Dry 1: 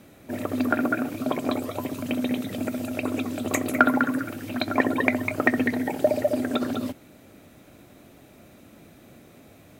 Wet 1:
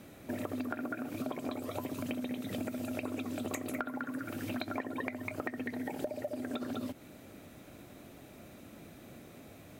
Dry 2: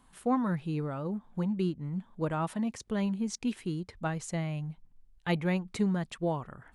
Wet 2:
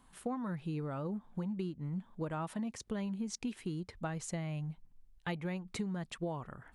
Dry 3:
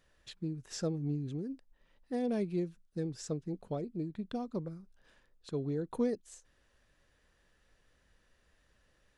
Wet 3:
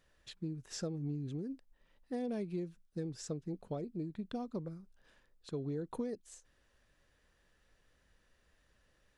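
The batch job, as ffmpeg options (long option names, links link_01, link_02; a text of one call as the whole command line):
ffmpeg -i in.wav -af "acompressor=threshold=-32dB:ratio=16,volume=-1.5dB" out.wav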